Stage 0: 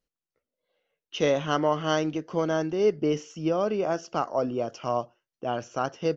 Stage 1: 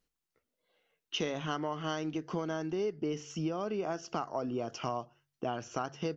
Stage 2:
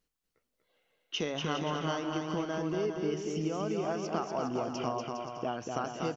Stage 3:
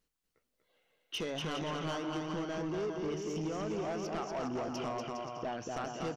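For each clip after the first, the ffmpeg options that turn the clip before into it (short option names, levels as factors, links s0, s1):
-af "equalizer=f=550:t=o:w=0.33:g=-7.5,bandreject=f=47.29:t=h:w=4,bandreject=f=94.58:t=h:w=4,bandreject=f=141.87:t=h:w=4,acompressor=threshold=0.0178:ratio=6,volume=1.5"
-af "aecho=1:1:240|408|525.6|607.9|665.5:0.631|0.398|0.251|0.158|0.1"
-af "asoftclip=type=tanh:threshold=0.0282"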